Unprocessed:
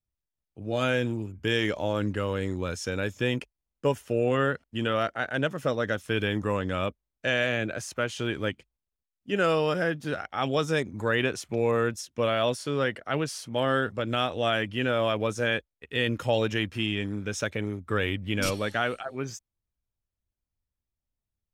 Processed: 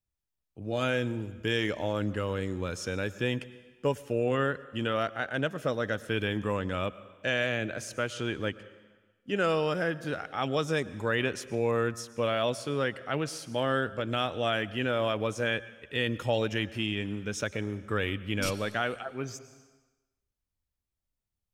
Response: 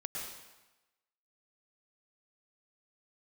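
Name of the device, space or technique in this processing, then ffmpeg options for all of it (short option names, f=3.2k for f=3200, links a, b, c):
ducked reverb: -filter_complex "[0:a]asplit=3[a][b][c];[1:a]atrim=start_sample=2205[d];[b][d]afir=irnorm=-1:irlink=0[e];[c]apad=whole_len=949700[f];[e][f]sidechaincompress=threshold=-33dB:ratio=4:attack=9.7:release=812,volume=-6dB[g];[a][g]amix=inputs=2:normalize=0,asettb=1/sr,asplit=3[h][i][j];[h]atrim=end=8.134[k];[i]atrim=start=8.13:end=9.72,asetpts=PTS-STARTPTS,afade=t=in:d=0.004:c=qsin,afade=t=out:st=1.586:d=0.004:c=qsin,lowpass=12k[l];[j]atrim=start=9.716[m];[k][l]acrossfade=d=0.004:c1=hsin:c2=qsin[n];[n][m]acrossfade=d=0.004:c1=qsin:c2=hsin,volume=-3.5dB"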